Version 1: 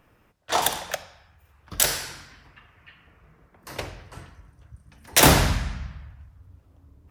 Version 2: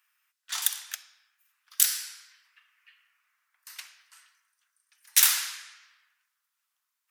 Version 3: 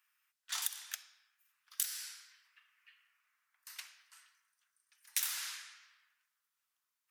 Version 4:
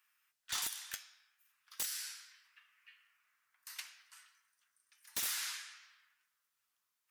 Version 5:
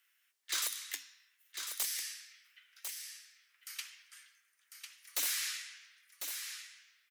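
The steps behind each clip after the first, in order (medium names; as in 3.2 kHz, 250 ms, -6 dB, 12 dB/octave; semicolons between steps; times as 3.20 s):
inverse Chebyshev high-pass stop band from 220 Hz, stop band 80 dB; treble shelf 3.9 kHz +12 dB; trim -10.5 dB
compression 6:1, threshold -27 dBFS, peak gain reduction 12.5 dB; trim -5 dB
flange 0.55 Hz, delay 8.1 ms, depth 2.1 ms, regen +64%; wavefolder -35.5 dBFS; trim +6 dB
frequency shift +270 Hz; delay 1049 ms -7 dB; trim +3 dB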